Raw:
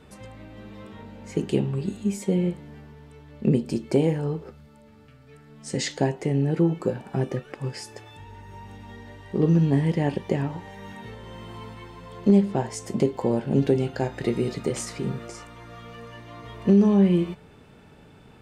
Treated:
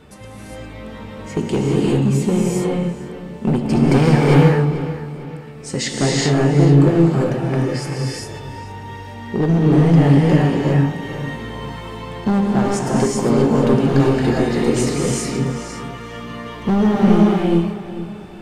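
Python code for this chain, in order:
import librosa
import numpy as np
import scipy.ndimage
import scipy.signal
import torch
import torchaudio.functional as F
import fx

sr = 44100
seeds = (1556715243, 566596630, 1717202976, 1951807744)

y = fx.graphic_eq(x, sr, hz=(125, 1000, 2000), db=(10, 11, 10), at=(3.7, 4.25))
y = np.clip(10.0 ** (18.0 / 20.0) * y, -1.0, 1.0) / 10.0 ** (18.0 / 20.0)
y = fx.echo_filtered(y, sr, ms=443, feedback_pct=41, hz=5000.0, wet_db=-13.5)
y = fx.rev_gated(y, sr, seeds[0], gate_ms=430, shape='rising', drr_db=-4.0)
y = F.gain(torch.from_numpy(y), 5.0).numpy()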